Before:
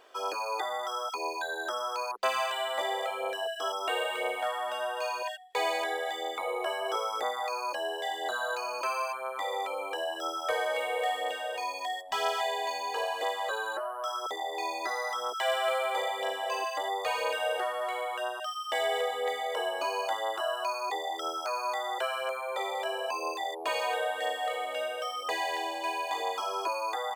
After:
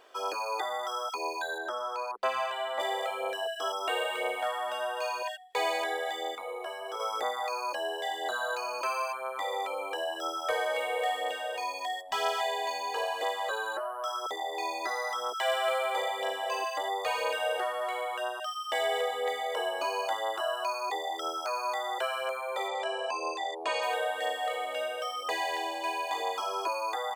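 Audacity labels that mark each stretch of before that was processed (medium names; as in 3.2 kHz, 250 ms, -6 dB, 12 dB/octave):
1.580000	2.800000	treble shelf 3.4 kHz -11 dB
6.350000	7.000000	feedback comb 240 Hz, decay 0.15 s
22.680000	23.830000	low-pass 8.5 kHz 24 dB/octave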